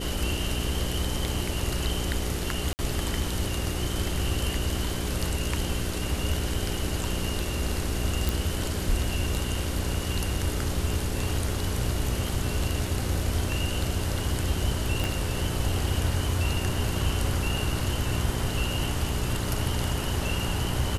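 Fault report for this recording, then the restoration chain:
hum 60 Hz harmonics 7 -32 dBFS
2.73–2.79 s: dropout 59 ms
8.29 s: pop
15.04 s: pop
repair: de-click; de-hum 60 Hz, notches 7; interpolate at 2.73 s, 59 ms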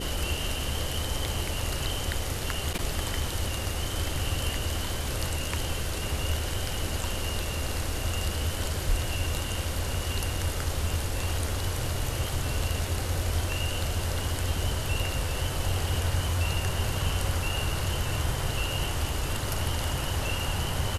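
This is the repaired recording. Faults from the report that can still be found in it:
15.04 s: pop

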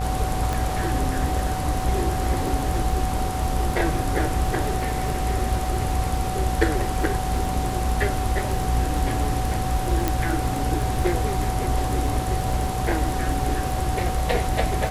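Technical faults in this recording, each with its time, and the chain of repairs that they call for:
buzz 60 Hz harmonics 36 -28 dBFS
crackle 21 per s -28 dBFS
whine 750 Hz -29 dBFS
0.53 s: pop
10.08 s: pop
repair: de-click; band-stop 750 Hz, Q 30; de-hum 60 Hz, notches 36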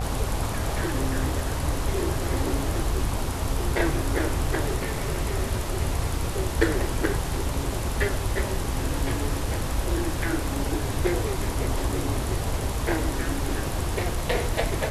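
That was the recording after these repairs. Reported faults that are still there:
nothing left

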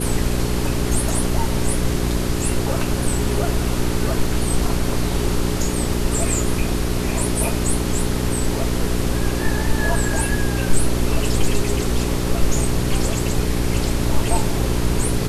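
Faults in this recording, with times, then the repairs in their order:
hum 60 Hz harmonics 7 -23 dBFS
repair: de-hum 60 Hz, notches 7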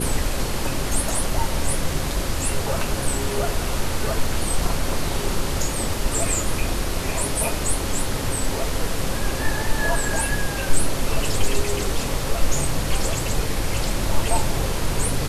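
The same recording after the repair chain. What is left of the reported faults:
nothing left

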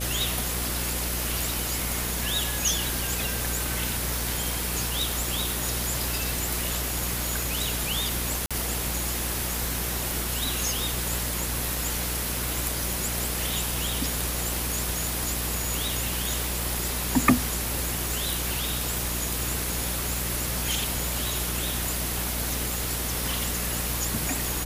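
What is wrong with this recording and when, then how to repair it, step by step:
buzz 60 Hz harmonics 10 -33 dBFS
8.46–8.51 s: dropout 46 ms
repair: de-hum 60 Hz, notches 10; interpolate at 8.46 s, 46 ms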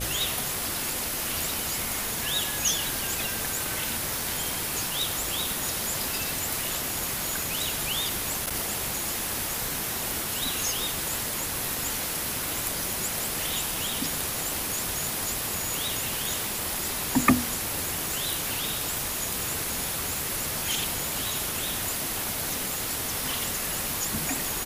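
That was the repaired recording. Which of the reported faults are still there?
nothing left

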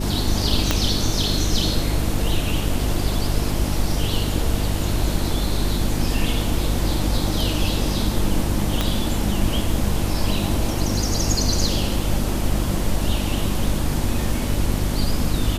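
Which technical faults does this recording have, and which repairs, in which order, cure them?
hum 50 Hz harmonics 7 -25 dBFS
0.71 s: pop -2 dBFS
8.81 s: pop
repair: de-click; de-hum 50 Hz, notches 7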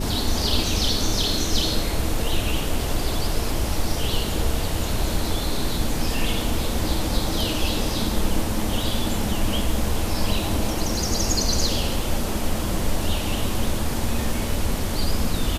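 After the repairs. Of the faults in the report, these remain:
0.71 s: pop
8.81 s: pop

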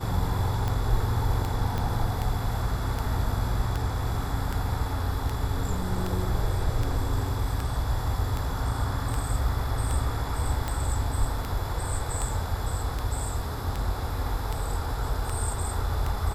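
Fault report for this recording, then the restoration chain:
tick 78 rpm -16 dBFS
1.78 s: pop -17 dBFS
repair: de-click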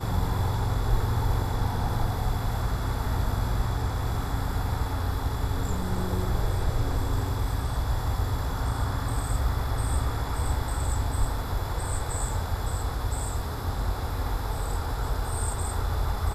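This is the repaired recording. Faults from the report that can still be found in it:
1.78 s: pop

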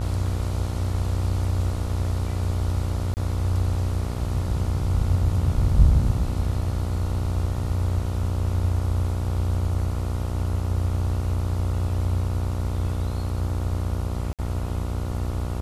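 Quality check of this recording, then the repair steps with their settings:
buzz 60 Hz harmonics 24 -29 dBFS
3.14–3.17 s: dropout 29 ms
14.33–14.39 s: dropout 57 ms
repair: de-hum 60 Hz, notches 24; interpolate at 3.14 s, 29 ms; interpolate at 14.33 s, 57 ms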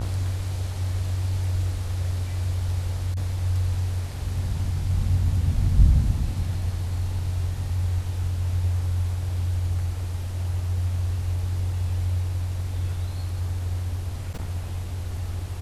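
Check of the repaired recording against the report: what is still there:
nothing left

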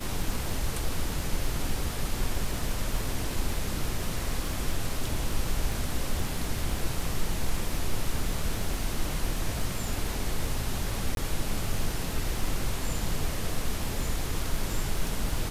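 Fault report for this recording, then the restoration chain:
crackle 54 per s -34 dBFS
11.15–11.17 s: dropout 22 ms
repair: de-click; interpolate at 11.15 s, 22 ms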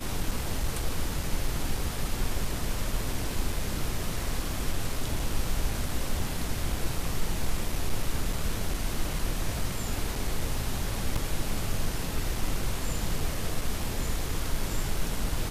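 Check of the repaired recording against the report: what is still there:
nothing left

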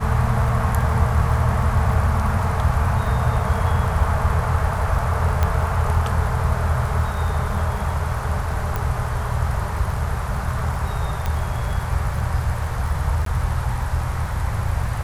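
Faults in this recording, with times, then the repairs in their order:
crackle 25 per s -28 dBFS
5.43 s: pop -8 dBFS
8.76 s: pop
11.26 s: pop -11 dBFS
13.25–13.26 s: dropout 13 ms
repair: de-click; interpolate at 13.25 s, 13 ms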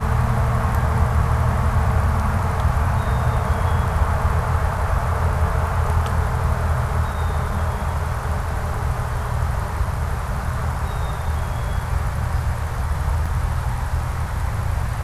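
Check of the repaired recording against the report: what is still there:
8.76 s: pop

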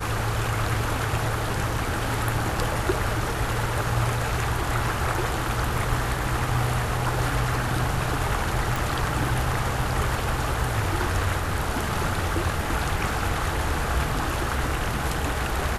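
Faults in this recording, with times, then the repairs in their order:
8.76 s: pop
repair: de-click

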